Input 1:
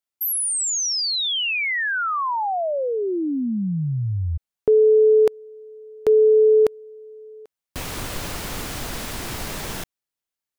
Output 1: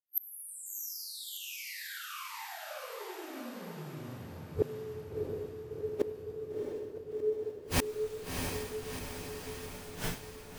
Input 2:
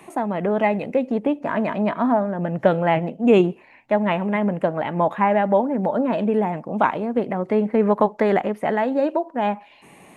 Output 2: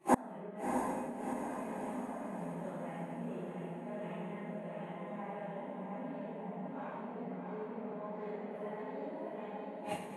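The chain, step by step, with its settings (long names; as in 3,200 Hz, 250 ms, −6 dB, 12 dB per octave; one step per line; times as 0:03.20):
random phases in long frames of 200 ms
reverb whose tail is shaped and stops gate 420 ms falling, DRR −3.5 dB
downward expander −32 dBFS, range −27 dB
parametric band 140 Hz +5.5 dB 1.5 octaves
downward compressor, threshold −14 dBFS
parametric band 62 Hz −4 dB 2.2 octaves
gate with flip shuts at −19 dBFS, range −30 dB
feedback delay with all-pass diffusion 683 ms, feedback 62%, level −3 dB
one half of a high-frequency compander decoder only
level +3.5 dB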